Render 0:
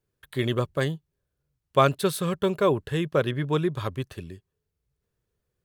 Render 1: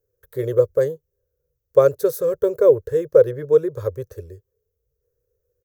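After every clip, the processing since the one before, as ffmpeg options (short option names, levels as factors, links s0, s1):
-af "firequalizer=gain_entry='entry(100,0);entry(200,-22);entry(490,14);entry(700,-11);entry(1000,-11);entry(1500,-8);entry(2900,-24);entry(6000,-1);entry(9300,-10);entry(14000,6)':delay=0.05:min_phase=1,volume=1.5"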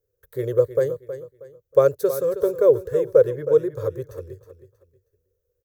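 -af "aecho=1:1:318|636|954:0.251|0.0754|0.0226,volume=0.794"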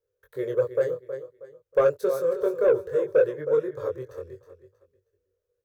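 -filter_complex "[0:a]flanger=delay=19.5:depth=4.6:speed=0.6,asplit=2[s0][s1];[s1]highpass=f=720:p=1,volume=4.47,asoftclip=type=tanh:threshold=0.447[s2];[s0][s2]amix=inputs=2:normalize=0,lowpass=f=2300:p=1,volume=0.501,volume=0.708"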